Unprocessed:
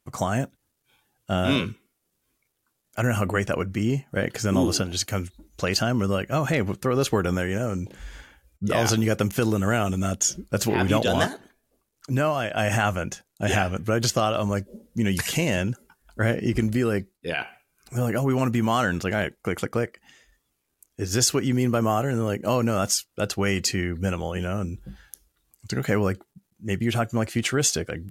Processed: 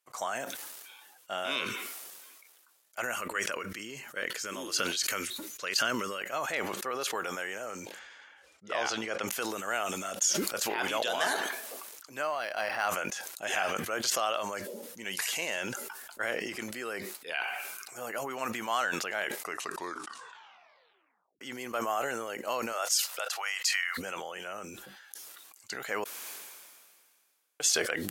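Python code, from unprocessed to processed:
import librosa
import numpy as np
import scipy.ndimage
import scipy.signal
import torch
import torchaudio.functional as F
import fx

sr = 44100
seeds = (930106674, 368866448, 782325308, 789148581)

y = fx.peak_eq(x, sr, hz=750.0, db=-12.5, octaves=0.55, at=(3.16, 6.21))
y = fx.air_absorb(y, sr, metres=96.0, at=(7.99, 9.28))
y = fx.resample_linear(y, sr, factor=6, at=(12.23, 12.89))
y = fx.highpass(y, sr, hz=fx.line((22.72, 370.0), (23.97, 1200.0)), slope=24, at=(22.72, 23.97), fade=0.02)
y = fx.edit(y, sr, fx.tape_stop(start_s=19.34, length_s=2.07),
    fx.room_tone_fill(start_s=26.04, length_s=1.56), tone=tone)
y = scipy.signal.sosfilt(scipy.signal.butter(2, 730.0, 'highpass', fs=sr, output='sos'), y)
y = fx.sustainer(y, sr, db_per_s=30.0)
y = y * 10.0 ** (-5.0 / 20.0)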